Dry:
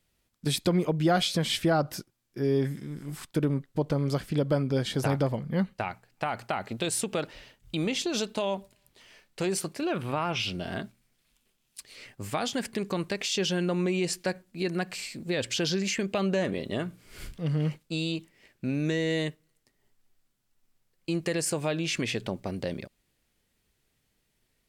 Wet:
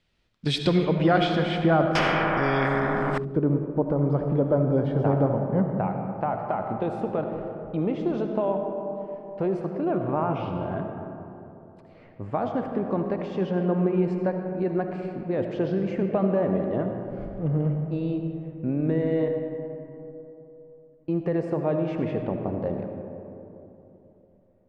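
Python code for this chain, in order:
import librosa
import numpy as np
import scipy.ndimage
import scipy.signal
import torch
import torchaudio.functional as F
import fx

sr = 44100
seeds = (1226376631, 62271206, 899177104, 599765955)

y = fx.filter_sweep_lowpass(x, sr, from_hz=3800.0, to_hz=900.0, start_s=0.62, end_s=2.31, q=1.1)
y = fx.rev_freeverb(y, sr, rt60_s=3.2, hf_ratio=0.35, predelay_ms=35, drr_db=4.0)
y = fx.spectral_comp(y, sr, ratio=4.0, at=(1.95, 3.18))
y = y * librosa.db_to_amplitude(2.5)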